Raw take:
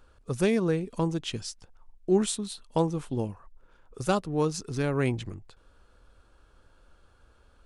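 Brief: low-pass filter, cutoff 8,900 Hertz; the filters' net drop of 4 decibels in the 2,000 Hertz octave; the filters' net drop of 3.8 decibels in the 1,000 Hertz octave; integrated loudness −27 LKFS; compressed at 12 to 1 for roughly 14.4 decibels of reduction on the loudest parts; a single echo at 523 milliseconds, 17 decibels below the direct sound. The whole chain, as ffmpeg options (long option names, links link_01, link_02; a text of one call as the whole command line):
ffmpeg -i in.wav -af "lowpass=8900,equalizer=frequency=1000:width_type=o:gain=-4,equalizer=frequency=2000:width_type=o:gain=-4,acompressor=threshold=-34dB:ratio=12,aecho=1:1:523:0.141,volume=13.5dB" out.wav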